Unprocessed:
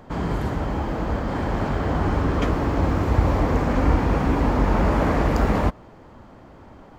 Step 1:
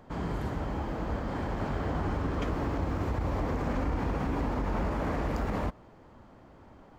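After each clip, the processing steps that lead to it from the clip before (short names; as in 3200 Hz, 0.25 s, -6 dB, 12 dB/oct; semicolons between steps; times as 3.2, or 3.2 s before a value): limiter -14 dBFS, peak gain reduction 8.5 dB; gain -8 dB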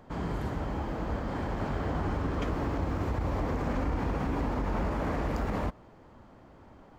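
nothing audible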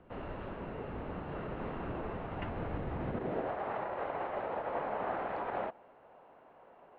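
high-pass sweep 160 Hz -> 1100 Hz, 2.39–3.54; mistuned SSB -390 Hz 430–3500 Hz; gain -2 dB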